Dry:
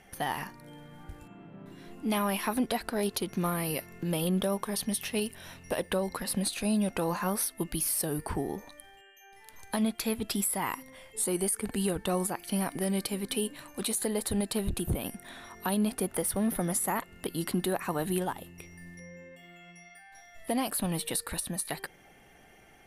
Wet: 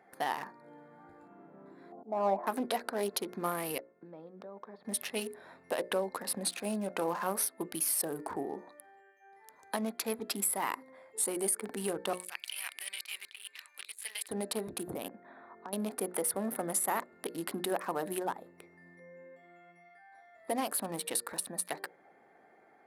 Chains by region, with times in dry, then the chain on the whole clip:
1.92–2.47 s: resonant low-pass 720 Hz, resonance Q 3.3 + slow attack 236 ms
3.78–4.85 s: level held to a coarse grid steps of 21 dB + distance through air 250 m
12.13–14.29 s: resonant high-pass 2.6 kHz, resonance Q 3 + compressor with a negative ratio -38 dBFS
15.08–15.73 s: distance through air 420 m + compression 10:1, threshold -36 dBFS
whole clip: local Wiener filter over 15 samples; high-pass 330 Hz 12 dB/octave; hum notches 60/120/180/240/300/360/420/480/540/600 Hz

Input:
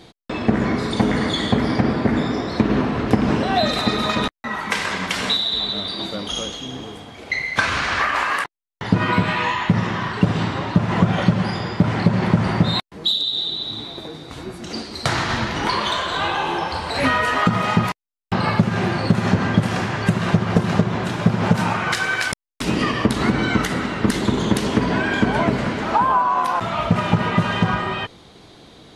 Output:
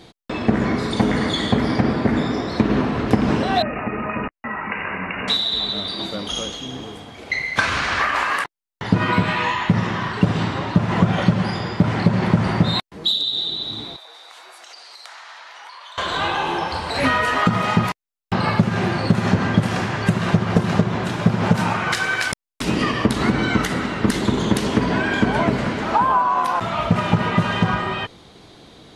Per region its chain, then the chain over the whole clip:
3.62–5.28 s: compression 2:1, threshold -23 dBFS + brick-wall FIR low-pass 2.9 kHz
13.96–15.98 s: high-pass 700 Hz 24 dB/octave + compression, threshold -38 dBFS
whole clip: none

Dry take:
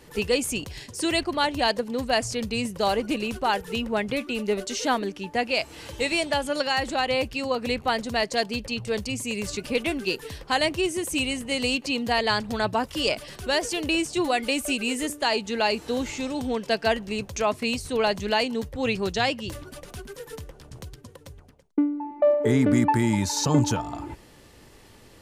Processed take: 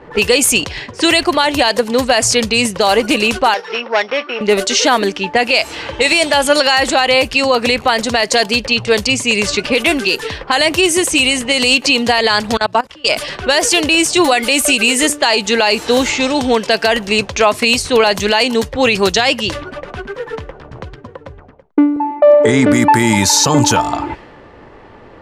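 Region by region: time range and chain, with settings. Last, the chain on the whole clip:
3.54–4.41 s: sorted samples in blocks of 8 samples + band-pass 560–2800 Hz + transformer saturation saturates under 1.2 kHz
12.57–13.09 s: treble shelf 11 kHz -3.5 dB + level held to a coarse grid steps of 24 dB + three bands expanded up and down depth 70%
21.96–22.68 s: steep low-pass 9.5 kHz 96 dB/octave + gate with hold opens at -31 dBFS, closes at -35 dBFS
whole clip: level-controlled noise filter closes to 1.1 kHz, open at -22.5 dBFS; bass shelf 370 Hz -11.5 dB; loudness maximiser +20.5 dB; trim -1 dB

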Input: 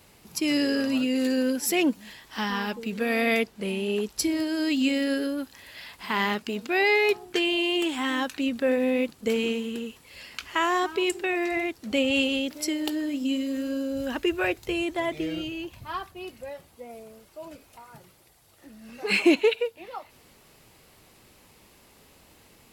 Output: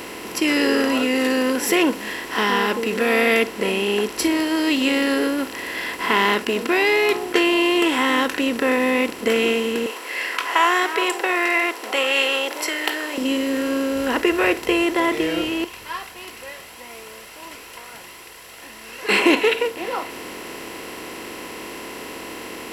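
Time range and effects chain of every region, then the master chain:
9.86–13.18 s: high-pass 520 Hz 24 dB/octave + sweeping bell 1.5 Hz 810–2100 Hz +9 dB
15.64–19.09 s: amplifier tone stack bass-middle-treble 10-0-10 + Shepard-style flanger rising 1.6 Hz
whole clip: spectral levelling over time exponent 0.4; spectral noise reduction 6 dB

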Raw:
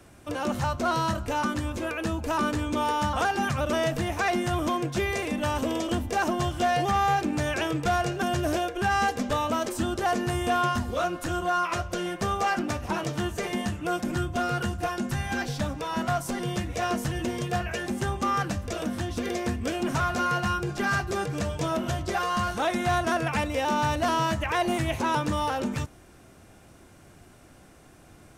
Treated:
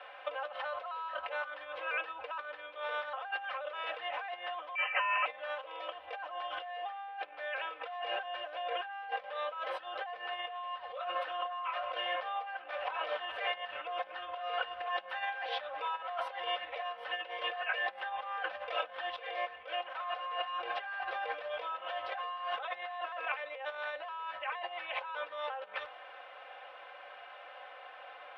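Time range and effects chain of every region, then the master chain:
4.75–5.26 s: high-pass 760 Hz 24 dB/octave + frequency inversion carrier 3.4 kHz
whole clip: comb 3.9 ms, depth 95%; compressor with a negative ratio -34 dBFS, ratio -1; elliptic band-pass 580–3200 Hz, stop band 40 dB; trim -1 dB

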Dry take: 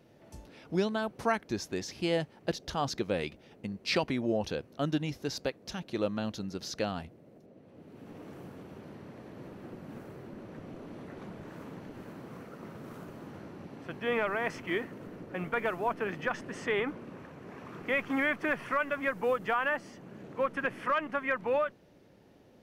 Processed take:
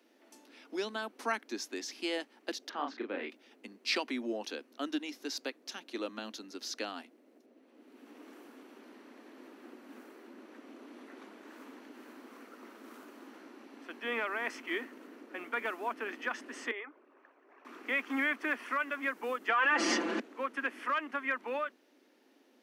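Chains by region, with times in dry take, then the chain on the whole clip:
2.69–3.30 s: Chebyshev band-pass 120–1900 Hz + doubling 34 ms -4 dB
16.71–17.65 s: resonances exaggerated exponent 1.5 + ladder high-pass 370 Hz, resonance 20% + peaking EQ 490 Hz -8 dB 0.24 oct
19.48–20.20 s: low-pass 5.7 kHz + comb 5.9 ms, depth 74% + level flattener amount 100%
whole clip: steep high-pass 240 Hz 72 dB/octave; peaking EQ 550 Hz -8.5 dB 1.5 oct

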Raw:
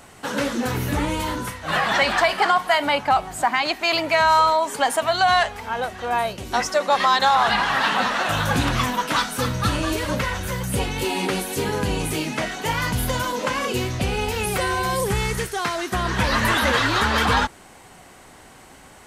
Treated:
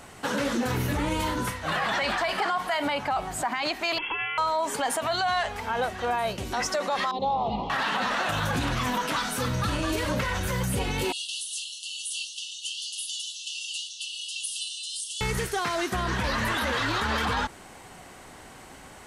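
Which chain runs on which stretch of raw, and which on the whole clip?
3.98–4.38 s: comb filter that takes the minimum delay 1.7 ms + compression 12:1, threshold -26 dBFS + frequency inversion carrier 3.3 kHz
7.11–7.70 s: Butterworth band-stop 1.6 kHz, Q 0.66 + tape spacing loss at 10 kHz 44 dB
11.12–15.21 s: brick-wall FIR band-pass 2.7–11 kHz + frequency shift -51 Hz
whole clip: treble shelf 11 kHz -3.5 dB; peak limiter -18.5 dBFS

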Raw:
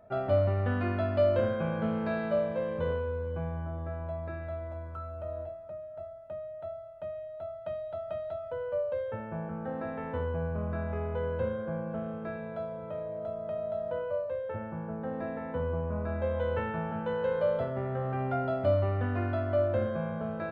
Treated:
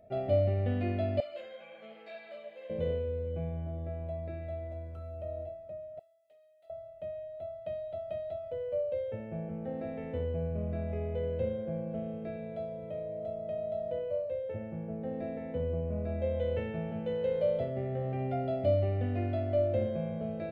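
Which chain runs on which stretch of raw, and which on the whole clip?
1.20–2.70 s: high-pass 1 kHz + three-phase chorus
5.99–6.70 s: differentiator + loudspeaker Doppler distortion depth 0.13 ms
whole clip: high-order bell 1.2 kHz -15.5 dB 1.1 oct; band-stop 970 Hz, Q 29; trim -1 dB

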